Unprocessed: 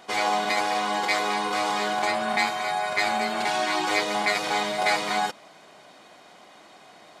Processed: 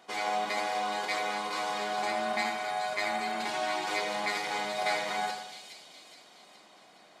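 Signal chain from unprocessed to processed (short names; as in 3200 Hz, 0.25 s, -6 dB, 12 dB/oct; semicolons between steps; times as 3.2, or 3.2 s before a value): HPF 120 Hz; split-band echo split 2800 Hz, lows 85 ms, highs 0.418 s, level -5.5 dB; gain -8.5 dB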